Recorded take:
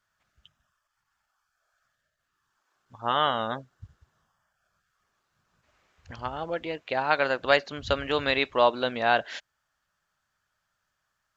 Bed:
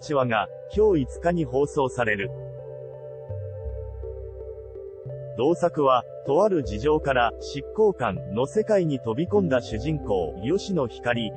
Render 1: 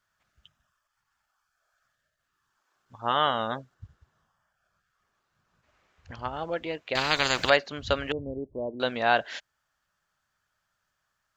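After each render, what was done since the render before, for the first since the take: 3.74–6.34 s: treble shelf 5.1 kHz -5 dB; 6.95–7.50 s: spectrum-flattening compressor 4:1; 8.12–8.80 s: Gaussian low-pass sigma 19 samples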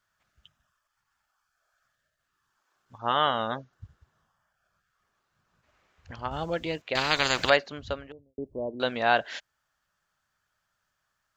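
2.98–3.73 s: brick-wall FIR low-pass 6.9 kHz; 6.31–6.82 s: tone controls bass +8 dB, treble +12 dB; 7.49–8.38 s: studio fade out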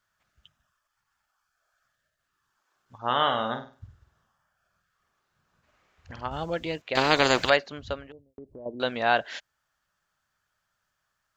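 2.96–6.23 s: flutter echo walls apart 8.4 m, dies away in 0.37 s; 6.97–7.39 s: peaking EQ 380 Hz +9.5 dB 2.7 oct; 8.04–8.66 s: compression, threshold -40 dBFS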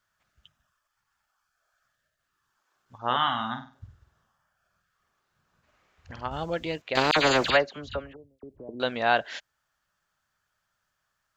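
3.16–3.75 s: Chebyshev band-stop 270–830 Hz; 7.11–8.69 s: phase dispersion lows, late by 52 ms, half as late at 1.8 kHz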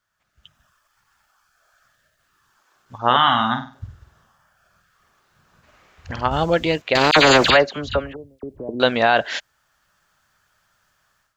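peak limiter -14 dBFS, peak gain reduction 8.5 dB; level rider gain up to 13 dB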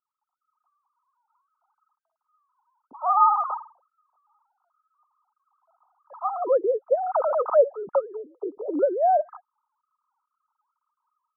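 formants replaced by sine waves; rippled Chebyshev low-pass 1.3 kHz, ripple 6 dB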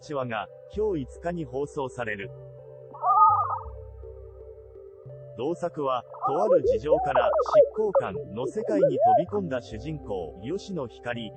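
add bed -7.5 dB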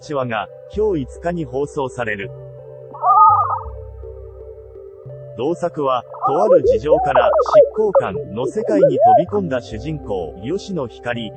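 trim +9 dB; peak limiter -1 dBFS, peak gain reduction 2 dB

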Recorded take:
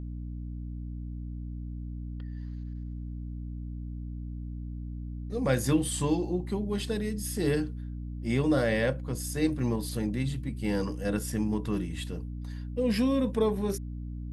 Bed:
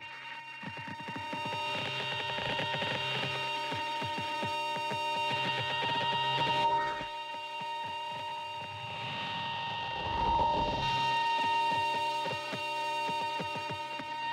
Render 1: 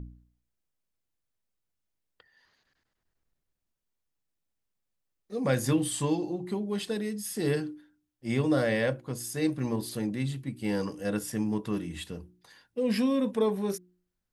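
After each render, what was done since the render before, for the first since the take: de-hum 60 Hz, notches 6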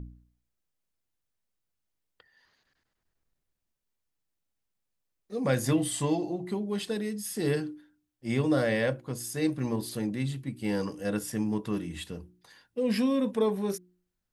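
5.66–6.50 s: small resonant body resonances 670/2000 Hz, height 14 dB, ringing for 100 ms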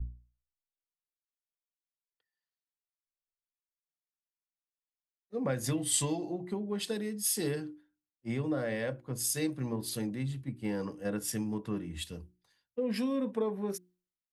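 compression 6:1, threshold -30 dBFS, peak gain reduction 9.5 dB; three bands expanded up and down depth 100%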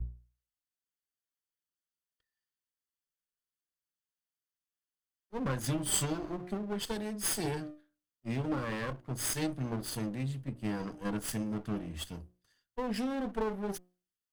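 comb filter that takes the minimum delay 0.64 ms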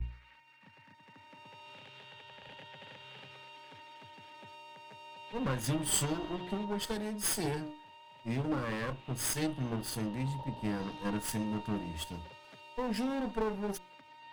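add bed -17.5 dB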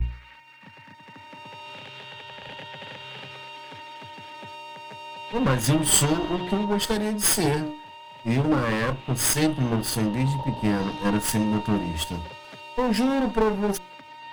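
trim +11.5 dB

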